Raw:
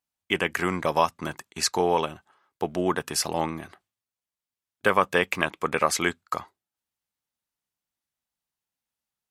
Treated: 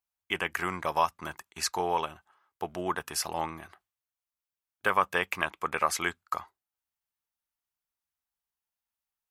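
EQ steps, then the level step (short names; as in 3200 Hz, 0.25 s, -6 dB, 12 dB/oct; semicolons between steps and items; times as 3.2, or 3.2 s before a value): graphic EQ 125/250/500/2000/4000/8000 Hz -9/-9/-7/-3/-5/-5 dB; 0.0 dB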